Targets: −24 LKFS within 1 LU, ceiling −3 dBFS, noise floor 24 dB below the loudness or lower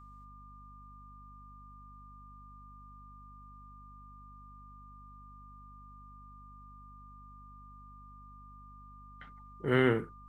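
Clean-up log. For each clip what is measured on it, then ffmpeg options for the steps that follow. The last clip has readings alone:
mains hum 50 Hz; hum harmonics up to 250 Hz; level of the hum −52 dBFS; interfering tone 1,200 Hz; level of the tone −59 dBFS; integrated loudness −29.0 LKFS; sample peak −14.0 dBFS; target loudness −24.0 LKFS
→ -af "bandreject=frequency=50:width_type=h:width=6,bandreject=frequency=100:width_type=h:width=6,bandreject=frequency=150:width_type=h:width=6,bandreject=frequency=200:width_type=h:width=6,bandreject=frequency=250:width_type=h:width=6"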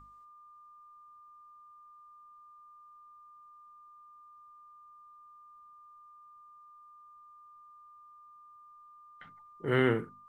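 mains hum none found; interfering tone 1,200 Hz; level of the tone −59 dBFS
→ -af "bandreject=frequency=1200:width=30"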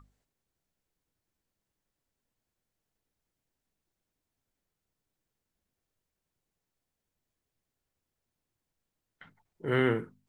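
interfering tone none found; integrated loudness −29.5 LKFS; sample peak −14.5 dBFS; target loudness −24.0 LKFS
→ -af "volume=5.5dB"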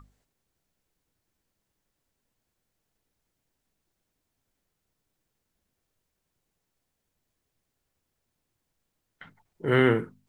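integrated loudness −24.0 LKFS; sample peak −9.0 dBFS; background noise floor −81 dBFS

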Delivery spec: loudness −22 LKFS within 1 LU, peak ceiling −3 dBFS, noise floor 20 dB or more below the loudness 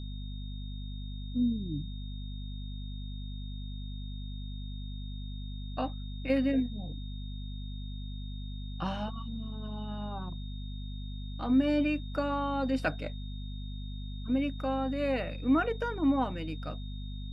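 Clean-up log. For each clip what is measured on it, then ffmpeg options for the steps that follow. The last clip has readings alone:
mains hum 50 Hz; hum harmonics up to 250 Hz; level of the hum −36 dBFS; interfering tone 3,700 Hz; level of the tone −51 dBFS; integrated loudness −34.5 LKFS; sample peak −16.5 dBFS; target loudness −22.0 LKFS
→ -af "bandreject=frequency=50:width_type=h:width=6,bandreject=frequency=100:width_type=h:width=6,bandreject=frequency=150:width_type=h:width=6,bandreject=frequency=200:width_type=h:width=6,bandreject=frequency=250:width_type=h:width=6"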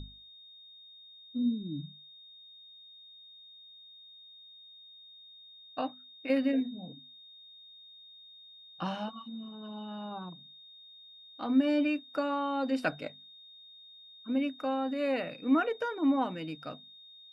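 mains hum none found; interfering tone 3,700 Hz; level of the tone −51 dBFS
→ -af "bandreject=frequency=3700:width=30"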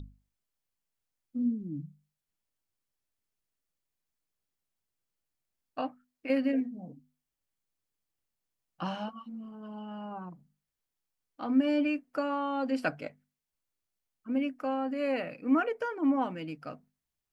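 interfering tone none found; integrated loudness −32.0 LKFS; sample peak −16.0 dBFS; target loudness −22.0 LKFS
→ -af "volume=10dB"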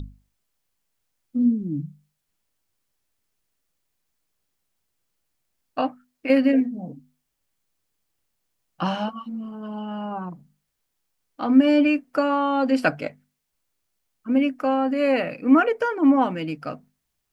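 integrated loudness −22.0 LKFS; sample peak −6.0 dBFS; background noise floor −78 dBFS

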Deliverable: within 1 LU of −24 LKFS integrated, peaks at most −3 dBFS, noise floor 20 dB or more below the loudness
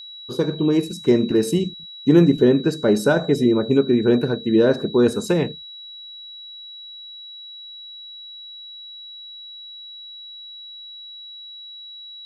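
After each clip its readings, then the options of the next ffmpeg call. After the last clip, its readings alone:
interfering tone 3,900 Hz; level of the tone −36 dBFS; integrated loudness −19.0 LKFS; sample peak −2.5 dBFS; target loudness −24.0 LKFS
→ -af "bandreject=frequency=3900:width=30"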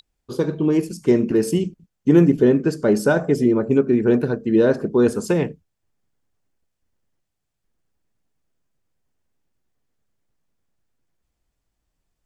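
interfering tone none found; integrated loudness −19.0 LKFS; sample peak −3.0 dBFS; target loudness −24.0 LKFS
→ -af "volume=-5dB"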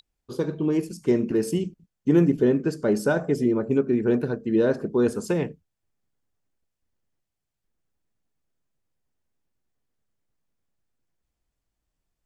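integrated loudness −24.0 LKFS; sample peak −8.0 dBFS; background noise floor −83 dBFS

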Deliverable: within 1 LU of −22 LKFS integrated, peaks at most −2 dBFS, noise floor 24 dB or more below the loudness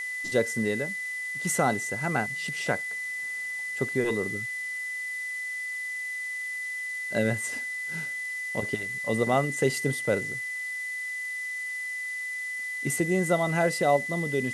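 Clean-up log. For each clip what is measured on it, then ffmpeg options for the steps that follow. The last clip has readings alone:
interfering tone 2,000 Hz; level of the tone −31 dBFS; background noise floor −34 dBFS; target noise floor −53 dBFS; integrated loudness −28.5 LKFS; sample peak −11.0 dBFS; target loudness −22.0 LKFS
→ -af "bandreject=frequency=2000:width=30"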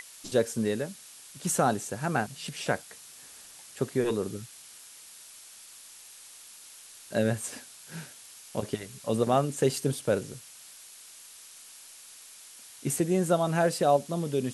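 interfering tone none found; background noise floor −50 dBFS; target noise floor −53 dBFS
→ -af "afftdn=noise_reduction=6:noise_floor=-50"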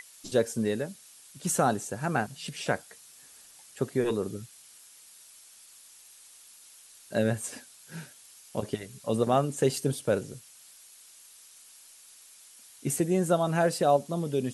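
background noise floor −54 dBFS; integrated loudness −29.0 LKFS; sample peak −11.5 dBFS; target loudness −22.0 LKFS
→ -af "volume=7dB"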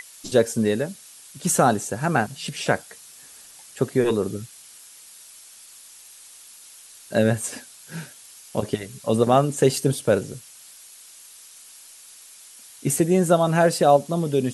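integrated loudness −22.0 LKFS; sample peak −4.5 dBFS; background noise floor −47 dBFS

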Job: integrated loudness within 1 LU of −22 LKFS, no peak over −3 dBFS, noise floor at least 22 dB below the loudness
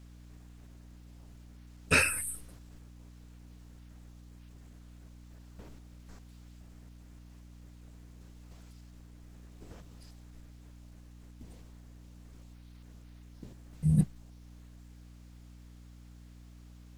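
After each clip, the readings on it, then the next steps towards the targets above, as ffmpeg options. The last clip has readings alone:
mains hum 60 Hz; hum harmonics up to 300 Hz; level of the hum −50 dBFS; integrated loudness −28.5 LKFS; sample peak −10.5 dBFS; target loudness −22.0 LKFS
→ -af "bandreject=frequency=60:width_type=h:width=4,bandreject=frequency=120:width_type=h:width=4,bandreject=frequency=180:width_type=h:width=4,bandreject=frequency=240:width_type=h:width=4,bandreject=frequency=300:width_type=h:width=4"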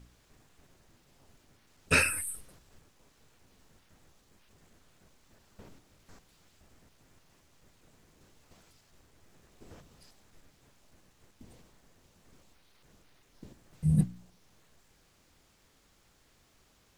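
mains hum none found; integrated loudness −29.0 LKFS; sample peak −10.5 dBFS; target loudness −22.0 LKFS
→ -af "volume=7dB"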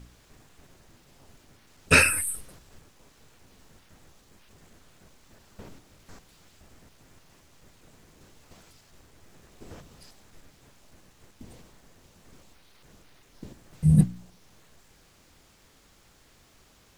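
integrated loudness −22.0 LKFS; sample peak −3.5 dBFS; background noise floor −60 dBFS

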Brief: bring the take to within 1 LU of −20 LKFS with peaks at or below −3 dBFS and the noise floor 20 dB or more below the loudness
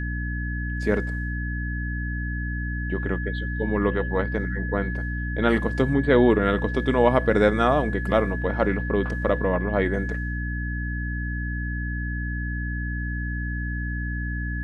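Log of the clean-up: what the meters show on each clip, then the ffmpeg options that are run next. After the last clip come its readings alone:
mains hum 60 Hz; hum harmonics up to 300 Hz; level of the hum −26 dBFS; interfering tone 1,700 Hz; level of the tone −33 dBFS; integrated loudness −25.0 LKFS; sample peak −4.5 dBFS; target loudness −20.0 LKFS
→ -af "bandreject=frequency=60:width_type=h:width=4,bandreject=frequency=120:width_type=h:width=4,bandreject=frequency=180:width_type=h:width=4,bandreject=frequency=240:width_type=h:width=4,bandreject=frequency=300:width_type=h:width=4"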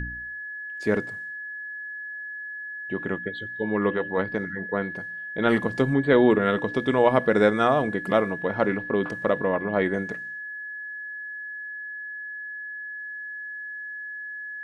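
mains hum none found; interfering tone 1,700 Hz; level of the tone −33 dBFS
→ -af "bandreject=frequency=1700:width=30"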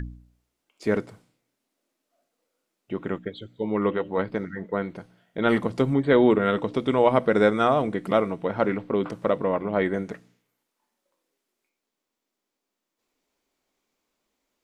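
interfering tone none found; integrated loudness −24.5 LKFS; sample peak −5.0 dBFS; target loudness −20.0 LKFS
→ -af "volume=4.5dB,alimiter=limit=-3dB:level=0:latency=1"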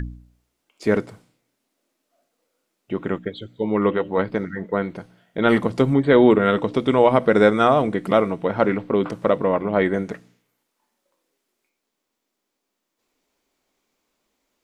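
integrated loudness −20.0 LKFS; sample peak −3.0 dBFS; background noise floor −79 dBFS

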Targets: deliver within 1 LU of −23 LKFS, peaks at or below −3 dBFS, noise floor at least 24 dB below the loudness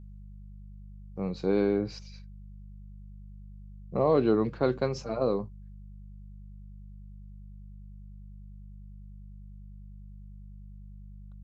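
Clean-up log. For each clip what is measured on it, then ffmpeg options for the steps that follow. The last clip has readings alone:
mains hum 50 Hz; hum harmonics up to 200 Hz; level of the hum −43 dBFS; integrated loudness −28.5 LKFS; sample peak −12.5 dBFS; target loudness −23.0 LKFS
→ -af "bandreject=frequency=50:width_type=h:width=4,bandreject=frequency=100:width_type=h:width=4,bandreject=frequency=150:width_type=h:width=4,bandreject=frequency=200:width_type=h:width=4"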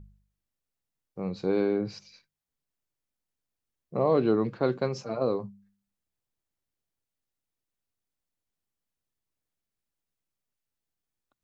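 mains hum none found; integrated loudness −28.5 LKFS; sample peak −12.5 dBFS; target loudness −23.0 LKFS
→ -af "volume=5.5dB"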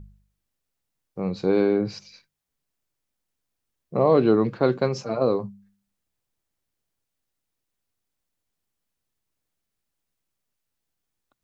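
integrated loudness −23.0 LKFS; sample peak −7.0 dBFS; background noise floor −82 dBFS

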